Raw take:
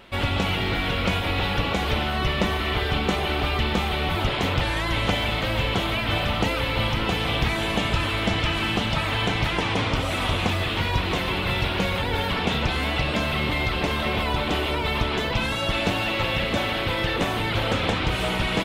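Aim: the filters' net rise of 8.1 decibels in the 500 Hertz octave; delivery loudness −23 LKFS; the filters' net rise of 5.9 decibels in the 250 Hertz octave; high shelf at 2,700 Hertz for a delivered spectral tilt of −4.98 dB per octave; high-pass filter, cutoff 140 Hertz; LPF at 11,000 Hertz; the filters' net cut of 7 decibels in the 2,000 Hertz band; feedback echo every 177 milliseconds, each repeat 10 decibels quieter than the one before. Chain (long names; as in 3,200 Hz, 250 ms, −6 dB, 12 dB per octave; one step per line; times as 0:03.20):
high-pass filter 140 Hz
low-pass filter 11,000 Hz
parametric band 250 Hz +6 dB
parametric band 500 Hz +9 dB
parametric band 2,000 Hz −5.5 dB
high-shelf EQ 2,700 Hz −8.5 dB
repeating echo 177 ms, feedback 32%, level −10 dB
level −1 dB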